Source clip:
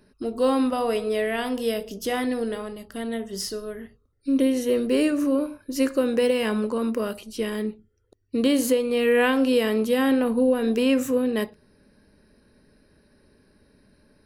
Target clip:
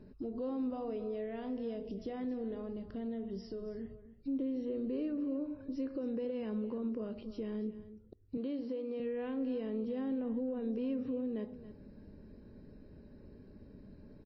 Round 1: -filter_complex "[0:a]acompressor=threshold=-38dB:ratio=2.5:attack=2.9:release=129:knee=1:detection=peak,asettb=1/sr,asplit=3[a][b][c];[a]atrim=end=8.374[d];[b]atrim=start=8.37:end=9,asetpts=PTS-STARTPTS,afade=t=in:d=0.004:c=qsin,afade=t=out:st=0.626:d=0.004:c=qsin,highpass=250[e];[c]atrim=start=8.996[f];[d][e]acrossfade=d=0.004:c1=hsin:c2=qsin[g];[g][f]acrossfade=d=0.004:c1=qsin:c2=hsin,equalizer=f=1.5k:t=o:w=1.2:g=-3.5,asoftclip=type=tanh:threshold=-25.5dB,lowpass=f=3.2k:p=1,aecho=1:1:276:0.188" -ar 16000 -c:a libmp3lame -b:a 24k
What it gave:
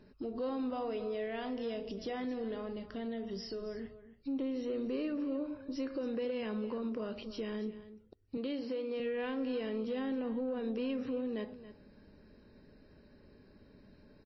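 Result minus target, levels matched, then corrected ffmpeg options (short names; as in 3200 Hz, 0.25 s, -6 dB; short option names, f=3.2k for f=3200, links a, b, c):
compressor: peak gain reduction -5 dB; 1000 Hz band +5.0 dB
-filter_complex "[0:a]acompressor=threshold=-46.5dB:ratio=2.5:attack=2.9:release=129:knee=1:detection=peak,asettb=1/sr,asplit=3[a][b][c];[a]atrim=end=8.374[d];[b]atrim=start=8.37:end=9,asetpts=PTS-STARTPTS,afade=t=in:d=0.004:c=qsin,afade=t=out:st=0.626:d=0.004:c=qsin,highpass=250[e];[c]atrim=start=8.996[f];[d][e]acrossfade=d=0.004:c1=hsin:c2=qsin[g];[g][f]acrossfade=d=0.004:c1=qsin:c2=hsin,equalizer=f=1.5k:t=o:w=1.2:g=-3.5,asoftclip=type=tanh:threshold=-25.5dB,lowpass=f=3.2k:p=1,tiltshelf=f=720:g=7,aecho=1:1:276:0.188" -ar 16000 -c:a libmp3lame -b:a 24k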